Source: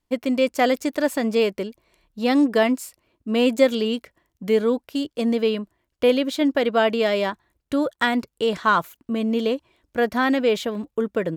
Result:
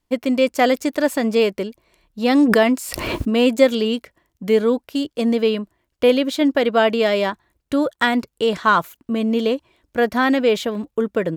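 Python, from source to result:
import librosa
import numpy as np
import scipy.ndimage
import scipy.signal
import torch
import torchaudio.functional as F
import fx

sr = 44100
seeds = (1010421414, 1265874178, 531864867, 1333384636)

y = fx.pre_swell(x, sr, db_per_s=31.0, at=(2.33, 3.29), fade=0.02)
y = y * librosa.db_to_amplitude(3.0)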